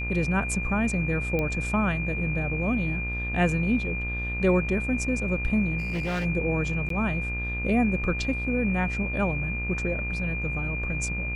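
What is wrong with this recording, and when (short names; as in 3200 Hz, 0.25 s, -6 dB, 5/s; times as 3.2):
buzz 60 Hz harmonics 36 -32 dBFS
tone 2400 Hz -31 dBFS
1.39 pop -16 dBFS
5.78–6.26 clipped -25 dBFS
6.89–6.9 gap 13 ms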